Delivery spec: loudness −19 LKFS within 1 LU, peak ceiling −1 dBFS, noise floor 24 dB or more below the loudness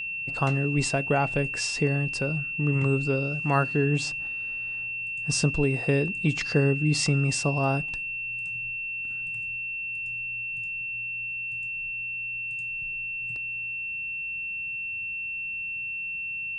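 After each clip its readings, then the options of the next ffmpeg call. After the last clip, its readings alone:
interfering tone 2,700 Hz; level of the tone −30 dBFS; integrated loudness −27.0 LKFS; sample peak −10.0 dBFS; target loudness −19.0 LKFS
→ -af "bandreject=frequency=2700:width=30"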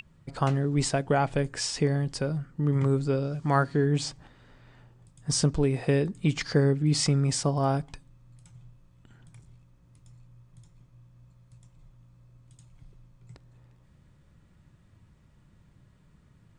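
interfering tone none found; integrated loudness −26.5 LKFS; sample peak −10.5 dBFS; target loudness −19.0 LKFS
→ -af "volume=7.5dB"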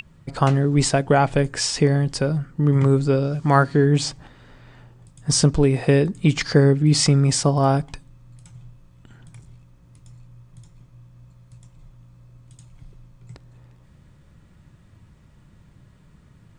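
integrated loudness −19.0 LKFS; sample peak −3.0 dBFS; background noise floor −53 dBFS

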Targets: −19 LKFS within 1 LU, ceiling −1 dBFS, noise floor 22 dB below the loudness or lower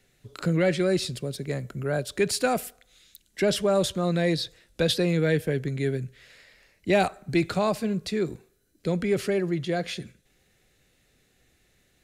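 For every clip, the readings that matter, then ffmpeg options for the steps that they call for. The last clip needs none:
integrated loudness −26.5 LKFS; sample peak −10.0 dBFS; target loudness −19.0 LKFS
→ -af "volume=7.5dB"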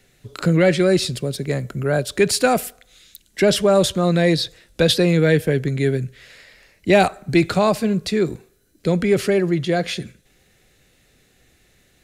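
integrated loudness −19.0 LKFS; sample peak −2.5 dBFS; background noise floor −59 dBFS

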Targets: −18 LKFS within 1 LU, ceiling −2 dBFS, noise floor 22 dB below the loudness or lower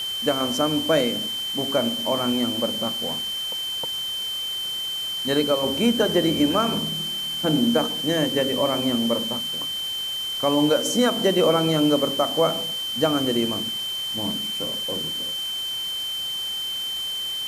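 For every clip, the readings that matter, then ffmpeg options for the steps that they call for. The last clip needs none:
interfering tone 3,100 Hz; level of the tone −26 dBFS; background noise floor −29 dBFS; target noise floor −45 dBFS; integrated loudness −22.5 LKFS; sample peak −8.0 dBFS; target loudness −18.0 LKFS
→ -af "bandreject=frequency=3100:width=30"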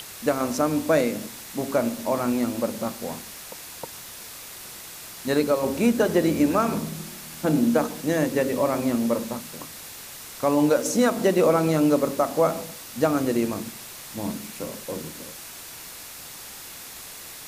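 interfering tone none found; background noise floor −41 dBFS; target noise floor −46 dBFS
→ -af "afftdn=noise_reduction=6:noise_floor=-41"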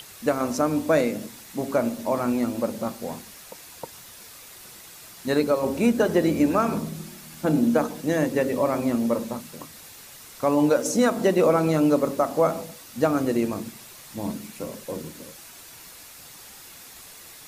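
background noise floor −45 dBFS; target noise floor −46 dBFS
→ -af "afftdn=noise_reduction=6:noise_floor=-45"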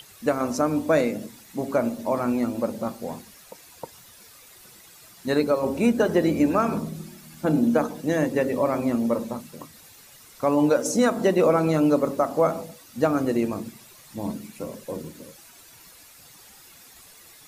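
background noise floor −50 dBFS; integrated loudness −24.0 LKFS; sample peak −9.0 dBFS; target loudness −18.0 LKFS
→ -af "volume=6dB"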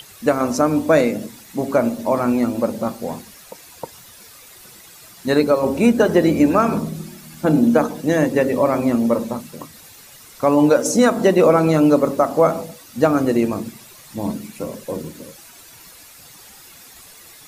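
integrated loudness −18.0 LKFS; sample peak −3.0 dBFS; background noise floor −44 dBFS

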